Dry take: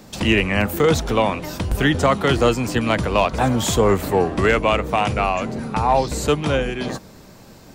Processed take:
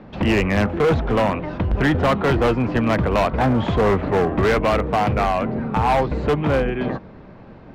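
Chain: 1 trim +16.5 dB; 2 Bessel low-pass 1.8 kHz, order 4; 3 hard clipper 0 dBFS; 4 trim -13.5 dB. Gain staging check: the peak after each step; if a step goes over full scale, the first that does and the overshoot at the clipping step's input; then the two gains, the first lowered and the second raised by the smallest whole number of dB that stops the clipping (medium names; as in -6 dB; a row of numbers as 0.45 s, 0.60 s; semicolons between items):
+9.5 dBFS, +9.5 dBFS, 0.0 dBFS, -13.5 dBFS; step 1, 9.5 dB; step 1 +6.5 dB, step 4 -3.5 dB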